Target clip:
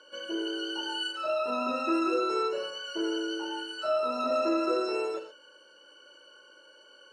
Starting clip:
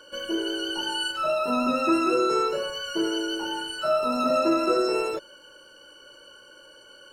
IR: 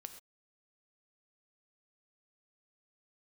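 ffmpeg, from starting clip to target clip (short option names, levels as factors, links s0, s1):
-filter_complex "[0:a]highpass=290,lowpass=6600[s0];[1:a]atrim=start_sample=2205[s1];[s0][s1]afir=irnorm=-1:irlink=0"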